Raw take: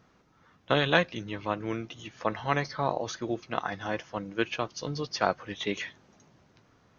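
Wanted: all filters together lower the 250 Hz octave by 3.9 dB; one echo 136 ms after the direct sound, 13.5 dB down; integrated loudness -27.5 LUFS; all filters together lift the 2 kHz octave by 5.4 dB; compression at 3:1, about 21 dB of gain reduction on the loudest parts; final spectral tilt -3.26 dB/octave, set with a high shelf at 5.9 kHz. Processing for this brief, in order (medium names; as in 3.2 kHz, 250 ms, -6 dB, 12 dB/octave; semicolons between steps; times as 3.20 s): peaking EQ 250 Hz -6 dB; peaking EQ 2 kHz +6.5 dB; treble shelf 5.9 kHz +7 dB; compression 3:1, threshold -44 dBFS; delay 136 ms -13.5 dB; trim +16 dB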